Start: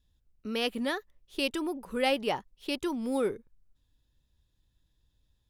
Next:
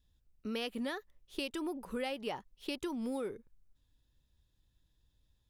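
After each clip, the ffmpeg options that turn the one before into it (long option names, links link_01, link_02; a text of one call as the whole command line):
ffmpeg -i in.wav -af "acompressor=threshold=-32dB:ratio=12,volume=-1.5dB" out.wav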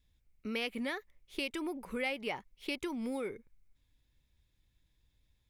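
ffmpeg -i in.wav -af "equalizer=frequency=2200:width=4.8:gain=13.5" out.wav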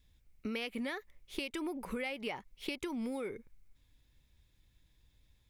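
ffmpeg -i in.wav -af "acompressor=threshold=-40dB:ratio=6,volume=5dB" out.wav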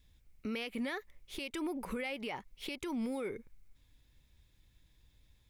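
ffmpeg -i in.wav -af "alimiter=level_in=7.5dB:limit=-24dB:level=0:latency=1,volume=-7.5dB,volume=2dB" out.wav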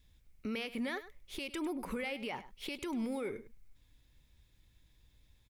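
ffmpeg -i in.wav -af "aecho=1:1:102:0.178" out.wav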